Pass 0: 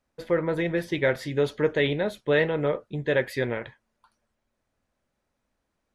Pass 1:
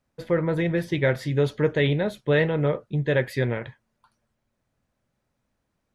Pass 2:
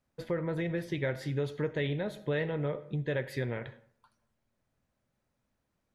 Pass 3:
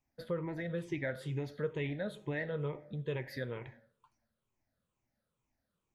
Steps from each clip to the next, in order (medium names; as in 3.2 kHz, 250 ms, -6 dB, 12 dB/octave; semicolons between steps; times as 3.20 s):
peaking EQ 130 Hz +8.5 dB 1.2 oct
algorithmic reverb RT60 0.59 s, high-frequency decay 0.6×, pre-delay 25 ms, DRR 16.5 dB; compression 2:1, threshold -29 dBFS, peak gain reduction 7.5 dB; trim -4 dB
drifting ripple filter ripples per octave 0.7, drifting -2.2 Hz, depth 12 dB; trim -6.5 dB